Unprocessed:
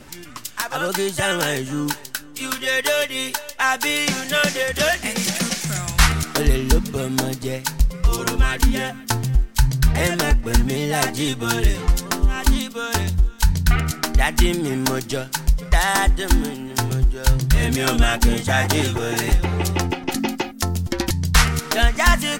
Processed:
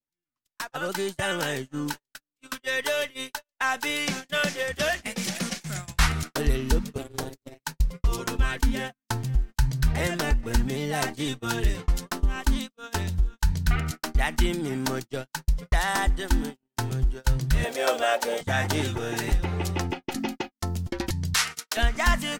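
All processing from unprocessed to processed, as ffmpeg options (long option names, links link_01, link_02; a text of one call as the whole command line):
ffmpeg -i in.wav -filter_complex "[0:a]asettb=1/sr,asplit=3[link_01][link_02][link_03];[link_01]atrim=end=6.984[link_04];[link_02]atrim=start=6.98:end=7.6,asetpts=PTS-STARTPTS,afade=type=in:duration=0.004:curve=qsin,afade=type=out:start_time=0.616:duration=0.004:curve=qsin,aeval=exprs='val(0)*sin(2*PI*140*n/s)':channel_layout=same,highshelf=frequency=11000:gain=2.5[link_05];[link_03]atrim=start=7.596[link_06];[link_04][link_05]acrossfade=duration=0.004:curve1=hsin:curve2=qsin[link_07];[link_07][link_06]acrossfade=duration=0.004:curve1=qsin:curve2=hsin,asettb=1/sr,asplit=3[link_08][link_09][link_10];[link_08]atrim=end=17.644[link_11];[link_09]atrim=start=17.64:end=18.41,asetpts=PTS-STARTPTS,afade=type=in:duration=0.004:curve=qsin,afade=type=out:start_time=0.766:duration=0.004:curve=qsin,acrusher=bits=5:mix=0:aa=0.5,highpass=frequency=560:width_type=q:width=4.6[link_12];[link_10]atrim=start=18.406[link_13];[link_11][link_12]acrossfade=duration=0.004:curve1=hsin:curve2=qsin[link_14];[link_14][link_13]acrossfade=duration=0.004:curve1=qsin:curve2=hsin,asettb=1/sr,asplit=3[link_15][link_16][link_17];[link_15]atrim=end=21.344[link_18];[link_16]atrim=start=21.34:end=21.77,asetpts=PTS-STARTPTS,afade=type=in:duration=0.004:curve=qsin,afade=type=out:start_time=0.426:duration=0.004:curve=qsin,highpass=frequency=1400:poles=1,equalizer=frequency=7400:width_type=o:width=2.5:gain=5[link_19];[link_17]atrim=start=21.766[link_20];[link_18][link_19]acrossfade=duration=0.004:curve1=hsin:curve2=qsin[link_21];[link_21][link_20]acrossfade=duration=0.004:curve1=qsin:curve2=hsin,agate=range=-49dB:threshold=-24dB:ratio=16:detection=peak,highshelf=frequency=6300:gain=-4.5,volume=-6.5dB" out.wav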